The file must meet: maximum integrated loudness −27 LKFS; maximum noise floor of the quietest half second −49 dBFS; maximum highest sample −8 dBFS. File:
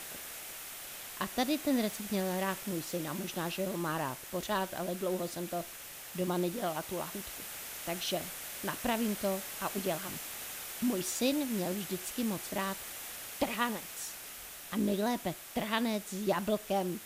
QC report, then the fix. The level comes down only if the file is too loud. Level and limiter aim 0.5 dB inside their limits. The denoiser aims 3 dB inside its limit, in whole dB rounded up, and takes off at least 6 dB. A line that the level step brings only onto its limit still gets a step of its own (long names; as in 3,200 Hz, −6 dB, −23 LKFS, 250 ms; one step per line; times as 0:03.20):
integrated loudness −35.0 LKFS: in spec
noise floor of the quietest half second −47 dBFS: out of spec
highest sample −16.0 dBFS: in spec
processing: broadband denoise 6 dB, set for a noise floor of −47 dBFS